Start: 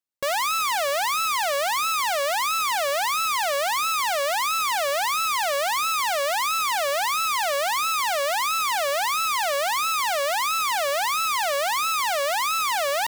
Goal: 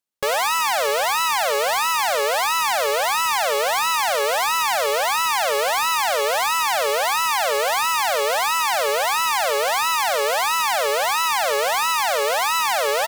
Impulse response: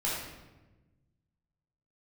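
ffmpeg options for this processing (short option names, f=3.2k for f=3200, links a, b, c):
-filter_complex "[0:a]asplit=2[a][b];[b]asetrate=33038,aresample=44100,atempo=1.33484,volume=-1dB[c];[a][c]amix=inputs=2:normalize=0,bandreject=f=121.5:t=h:w=4,bandreject=f=243:t=h:w=4,bandreject=f=364.5:t=h:w=4,bandreject=f=486:t=h:w=4,volume=1dB"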